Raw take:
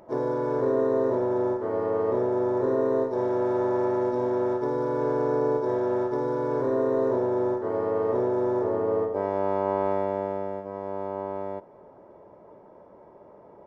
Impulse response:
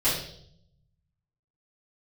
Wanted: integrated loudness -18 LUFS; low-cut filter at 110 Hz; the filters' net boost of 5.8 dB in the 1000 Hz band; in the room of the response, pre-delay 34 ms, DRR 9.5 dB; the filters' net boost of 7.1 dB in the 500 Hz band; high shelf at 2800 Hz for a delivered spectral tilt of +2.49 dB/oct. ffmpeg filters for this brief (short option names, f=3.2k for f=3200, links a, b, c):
-filter_complex "[0:a]highpass=110,equalizer=f=500:t=o:g=8,equalizer=f=1k:t=o:g=5,highshelf=f=2.8k:g=-7,asplit=2[a][b];[1:a]atrim=start_sample=2205,adelay=34[c];[b][c]afir=irnorm=-1:irlink=0,volume=-22dB[d];[a][d]amix=inputs=2:normalize=0,volume=0.5dB"